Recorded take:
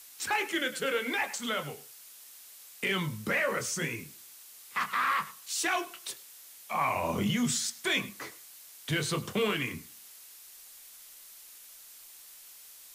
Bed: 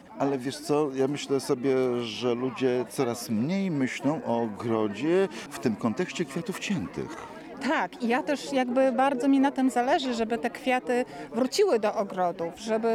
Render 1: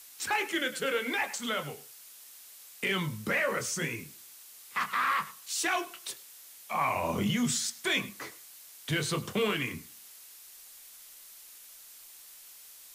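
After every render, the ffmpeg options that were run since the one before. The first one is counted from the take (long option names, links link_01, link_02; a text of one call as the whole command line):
ffmpeg -i in.wav -af anull out.wav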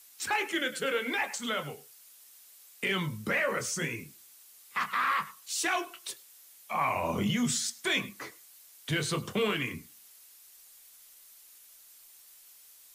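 ffmpeg -i in.wav -af "afftdn=noise_reduction=6:noise_floor=-52" out.wav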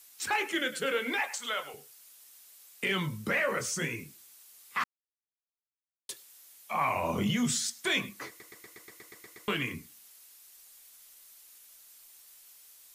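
ffmpeg -i in.wav -filter_complex "[0:a]asettb=1/sr,asplit=3[link_01][link_02][link_03];[link_01]atrim=end=1.204[link_04];[link_02]atrim=start=1.2:end=1.74,asetpts=PTS-STARTPTS,afade=type=in:duration=0.004:curve=qsin,afade=type=out:start_time=0.536:duration=0.004:curve=qsin,highpass=560[link_05];[link_03]atrim=start=1.736[link_06];[link_04][link_05]acrossfade=duration=0.004:curve1=hsin:curve2=qsin[link_07];[link_07][link_06]acrossfade=duration=0.004:curve1=qsin:curve2=hsin,asplit=13[link_08][link_09][link_10][link_11][link_12][link_13][link_14][link_15][link_16][link_17][link_18][link_19][link_20];[link_08]atrim=end=4.84,asetpts=PTS-STARTPTS,afade=type=out:start_time=4.836:duration=0.004:curve=hsin[link_21];[link_09]atrim=start=4.84:end=6.09,asetpts=PTS-STARTPTS,volume=0[link_22];[link_10]atrim=start=6.09:end=8.402,asetpts=PTS-STARTPTS,afade=type=in:duration=0.004:curve=hsin[link_23];[link_11]atrim=start=8.278:end=8.402[link_24];[link_12]atrim=start=8.278:end=8.402[link_25];[link_13]atrim=start=8.278:end=8.402[link_26];[link_14]atrim=start=8.278:end=8.402[link_27];[link_15]atrim=start=8.278:end=8.402[link_28];[link_16]atrim=start=8.278:end=8.402[link_29];[link_17]atrim=start=8.278:end=8.402[link_30];[link_18]atrim=start=8.278:end=8.402[link_31];[link_19]atrim=start=8.278:end=8.402[link_32];[link_20]atrim=start=9.478[link_33];[link_21][link_22][link_23]concat=n=3:v=0:a=1[link_34];[link_34][link_24]acrossfade=duration=0.004:curve1=hsin:curve2=hsin[link_35];[link_35][link_25]acrossfade=duration=0.004:curve1=hsin:curve2=hsin[link_36];[link_36][link_26]acrossfade=duration=0.004:curve1=hsin:curve2=hsin[link_37];[link_37][link_27]acrossfade=duration=0.004:curve1=hsin:curve2=hsin[link_38];[link_38][link_28]acrossfade=duration=0.004:curve1=hsin:curve2=hsin[link_39];[link_39][link_29]acrossfade=duration=0.004:curve1=hsin:curve2=hsin[link_40];[link_40][link_30]acrossfade=duration=0.004:curve1=hsin:curve2=hsin[link_41];[link_41][link_31]acrossfade=duration=0.004:curve1=hsin:curve2=hsin[link_42];[link_42][link_32]acrossfade=duration=0.004:curve1=hsin:curve2=hsin[link_43];[link_43][link_33]acrossfade=duration=0.004:curve1=hsin:curve2=hsin" out.wav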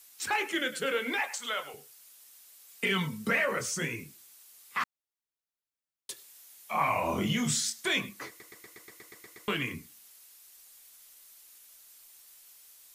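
ffmpeg -i in.wav -filter_complex "[0:a]asettb=1/sr,asplit=3[link_01][link_02][link_03];[link_01]atrim=end=2.684[link_04];[link_02]atrim=start=2.68:end=3.45,asetpts=PTS-STARTPTS,afade=type=in:duration=0.004:curve=qsin,afade=type=out:start_time=0.766:duration=0.004:curve=qsin,aecho=1:1:4.4:0.65,atrim=end_sample=33957[link_05];[link_03]atrim=start=3.446[link_06];[link_04][link_05]acrossfade=duration=0.004:curve1=hsin:curve2=qsin[link_07];[link_07][link_06]acrossfade=duration=0.004:curve1=qsin:curve2=hsin,asettb=1/sr,asplit=3[link_08][link_09][link_10];[link_08]atrim=end=6.154[link_11];[link_09]atrim=start=6.15:end=7.87,asetpts=PTS-STARTPTS,afade=type=in:duration=0.004:curve=qsin,afade=type=out:start_time=1.716:duration=0.004:curve=qsin,asplit=2[link_12][link_13];[link_13]adelay=27,volume=-4.5dB[link_14];[link_12][link_14]amix=inputs=2:normalize=0,atrim=end_sample=75852[link_15];[link_10]atrim=start=7.866[link_16];[link_11][link_15]acrossfade=duration=0.004:curve1=hsin:curve2=qsin[link_17];[link_17][link_16]acrossfade=duration=0.004:curve1=qsin:curve2=hsin" out.wav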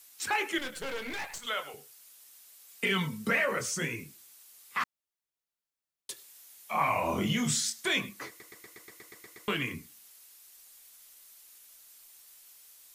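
ffmpeg -i in.wav -filter_complex "[0:a]asettb=1/sr,asplit=3[link_01][link_02][link_03];[link_01]atrim=end=0.584[link_04];[link_02]atrim=start=0.58:end=1.47,asetpts=PTS-STARTPTS,afade=type=in:duration=0.004:curve=qsin,afade=type=out:start_time=0.886:duration=0.004:curve=qsin,aeval=exprs='(tanh(44.7*val(0)+0.75)-tanh(0.75))/44.7':channel_layout=same[link_05];[link_03]atrim=start=1.466[link_06];[link_04][link_05]acrossfade=duration=0.004:curve1=hsin:curve2=qsin[link_07];[link_07][link_06]acrossfade=duration=0.004:curve1=qsin:curve2=hsin" out.wav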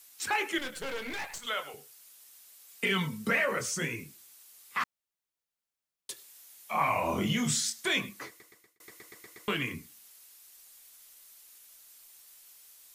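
ffmpeg -i in.wav -filter_complex "[0:a]asplit=2[link_01][link_02];[link_01]atrim=end=8.8,asetpts=PTS-STARTPTS,afade=type=out:start_time=8.16:duration=0.64[link_03];[link_02]atrim=start=8.8,asetpts=PTS-STARTPTS,afade=type=in:duration=0.004:curve=hsin[link_04];[link_03][link_04]concat=n=2:v=0:a=1" out.wav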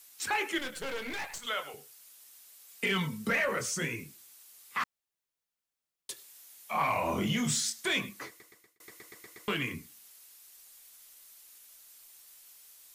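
ffmpeg -i in.wav -af "asoftclip=type=tanh:threshold=-20dB" out.wav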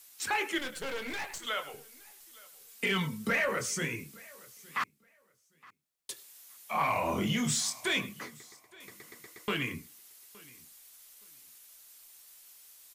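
ffmpeg -i in.wav -af "aecho=1:1:867|1734:0.0668|0.0127" out.wav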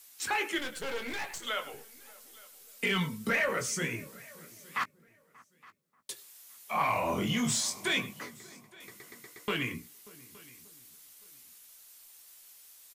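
ffmpeg -i in.wav -filter_complex "[0:a]asplit=2[link_01][link_02];[link_02]adelay=17,volume=-11dB[link_03];[link_01][link_03]amix=inputs=2:normalize=0,asplit=2[link_04][link_05];[link_05]adelay=585,lowpass=frequency=1000:poles=1,volume=-20.5dB,asplit=2[link_06][link_07];[link_07]adelay=585,lowpass=frequency=1000:poles=1,volume=0.34,asplit=2[link_08][link_09];[link_09]adelay=585,lowpass=frequency=1000:poles=1,volume=0.34[link_10];[link_04][link_06][link_08][link_10]amix=inputs=4:normalize=0" out.wav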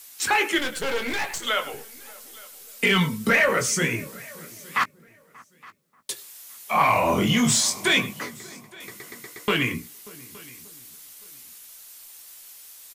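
ffmpeg -i in.wav -af "volume=9.5dB" out.wav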